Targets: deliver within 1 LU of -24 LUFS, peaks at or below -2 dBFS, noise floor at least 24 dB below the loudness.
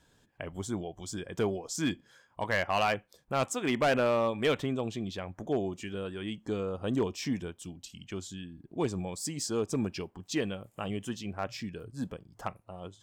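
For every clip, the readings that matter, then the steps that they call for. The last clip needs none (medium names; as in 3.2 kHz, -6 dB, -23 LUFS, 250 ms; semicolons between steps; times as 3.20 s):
clipped samples 0.5%; clipping level -21.0 dBFS; loudness -33.0 LUFS; peak level -21.0 dBFS; loudness target -24.0 LUFS
-> clip repair -21 dBFS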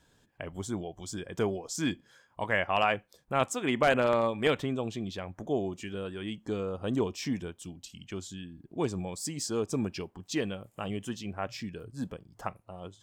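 clipped samples 0.0%; loudness -32.5 LUFS; peak level -12.0 dBFS; loudness target -24.0 LUFS
-> trim +8.5 dB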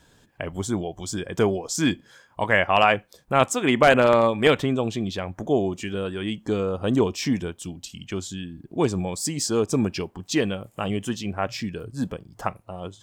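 loudness -24.0 LUFS; peak level -3.5 dBFS; noise floor -59 dBFS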